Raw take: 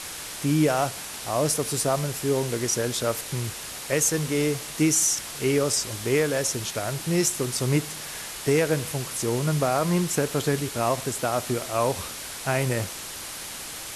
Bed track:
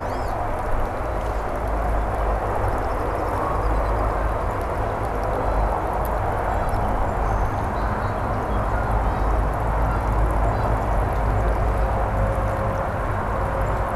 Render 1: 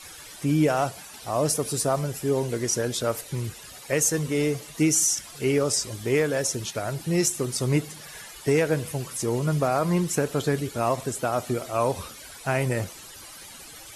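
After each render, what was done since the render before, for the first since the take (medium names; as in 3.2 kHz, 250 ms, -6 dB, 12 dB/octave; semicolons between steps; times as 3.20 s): noise reduction 13 dB, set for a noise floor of -37 dBFS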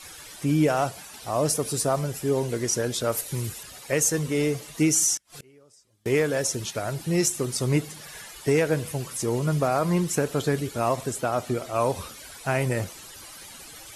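3.12–3.63 s: treble shelf 7.4 kHz +10 dB; 5.17–6.06 s: inverted gate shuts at -29 dBFS, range -32 dB; 11.21–11.76 s: treble shelf 8 kHz -5.5 dB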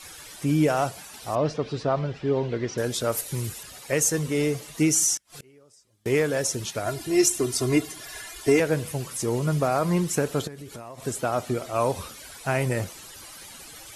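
1.35–2.78 s: low-pass 4 kHz 24 dB/octave; 6.86–8.60 s: comb 2.9 ms, depth 84%; 10.47–11.06 s: compression 16:1, threshold -35 dBFS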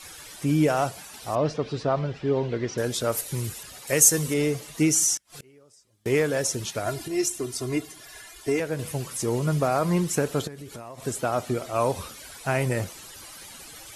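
3.87–4.34 s: treble shelf 6.1 kHz +11.5 dB; 7.08–8.79 s: gain -5.5 dB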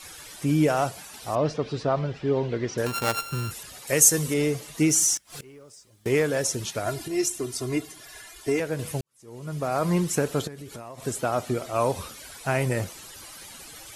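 2.86–3.51 s: sorted samples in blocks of 32 samples; 4.89–6.08 s: companding laws mixed up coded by mu; 9.01–9.85 s: fade in quadratic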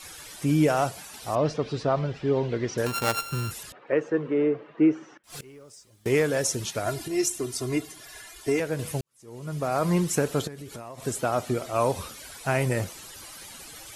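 3.72–5.24 s: cabinet simulation 250–2100 Hz, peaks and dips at 330 Hz +5 dB, 480 Hz +3 dB, 780 Hz -3 dB, 2.1 kHz -6 dB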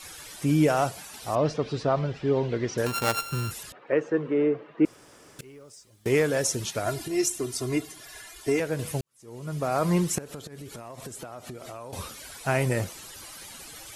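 4.85–5.39 s: room tone; 10.18–11.93 s: compression 20:1, threshold -35 dBFS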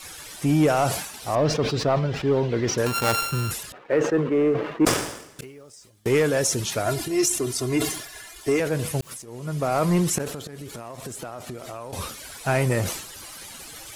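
waveshaping leveller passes 1; decay stretcher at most 73 dB/s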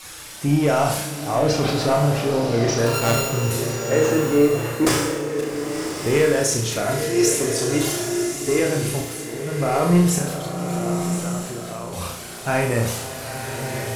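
on a send: flutter echo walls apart 5.9 m, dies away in 0.53 s; on the sum: swelling reverb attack 1190 ms, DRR 5 dB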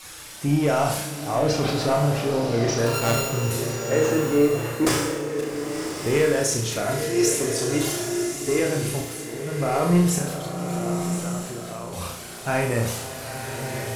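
trim -2.5 dB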